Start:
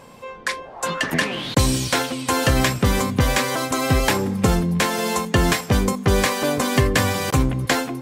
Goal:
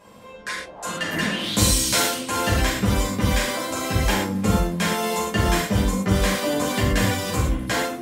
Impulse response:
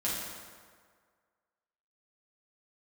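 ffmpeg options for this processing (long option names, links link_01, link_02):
-filter_complex "[0:a]asettb=1/sr,asplit=3[link_01][link_02][link_03];[link_01]atrim=end=1.334[link_04];[link_02]atrim=start=1.33:end=2.15,asetpts=PTS-STARTPTS,afade=type=in:duration=0.004:curve=qsin,afade=type=out:start_time=0.816:duration=0.004:curve=qsin,highshelf=frequency=3700:gain=11[link_05];[link_03]atrim=start=2.146[link_06];[link_04][link_05]acrossfade=duration=0.004:curve1=hsin:curve2=qsin[link_07];[link_07][link_06]acrossfade=duration=0.004:curve1=qsin:curve2=hsin[link_08];[1:a]atrim=start_sample=2205,atrim=end_sample=6174,asetrate=43659,aresample=44100[link_09];[link_08][link_09]afir=irnorm=-1:irlink=0,volume=-7.5dB"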